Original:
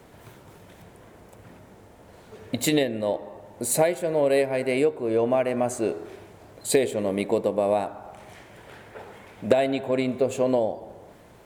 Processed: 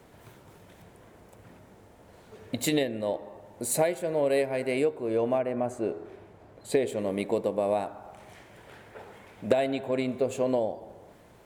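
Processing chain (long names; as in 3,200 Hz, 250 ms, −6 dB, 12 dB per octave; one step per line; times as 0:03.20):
0:05.37–0:06.86: high-shelf EQ 2,200 Hz → 4,300 Hz −12 dB
level −4 dB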